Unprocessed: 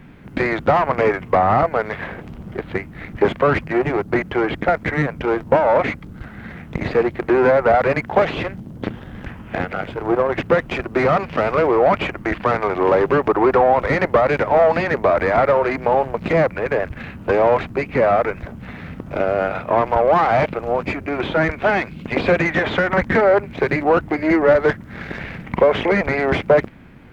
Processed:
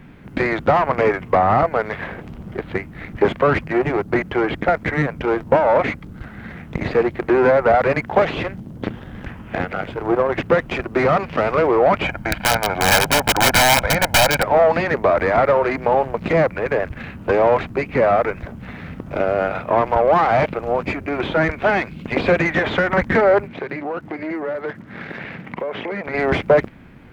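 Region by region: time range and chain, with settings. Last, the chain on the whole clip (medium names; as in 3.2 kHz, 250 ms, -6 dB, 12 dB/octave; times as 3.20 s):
12.04–14.43 s: integer overflow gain 9.5 dB + comb 1.3 ms, depth 66%
23.47–26.13 s: band-pass 140–4200 Hz + compression 3:1, threshold -26 dBFS + crackle 180 per s -52 dBFS
whole clip: none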